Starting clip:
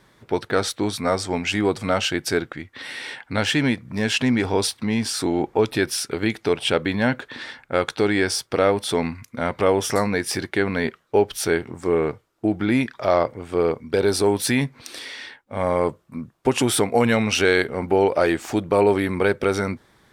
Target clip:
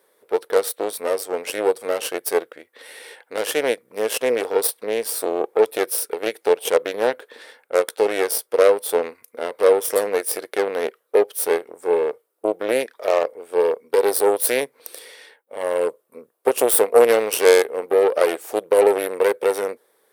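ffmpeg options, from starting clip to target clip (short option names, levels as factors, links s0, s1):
-af "aeval=exprs='0.631*(cos(1*acos(clip(val(0)/0.631,-1,1)))-cos(1*PI/2))+0.141*(cos(3*acos(clip(val(0)/0.631,-1,1)))-cos(3*PI/2))+0.112*(cos(4*acos(clip(val(0)/0.631,-1,1)))-cos(4*PI/2))':c=same,aexciter=amount=4.6:drive=7.5:freq=9500,highpass=f=470:t=q:w=4.9,equalizer=f=8200:w=1.2:g=4.5"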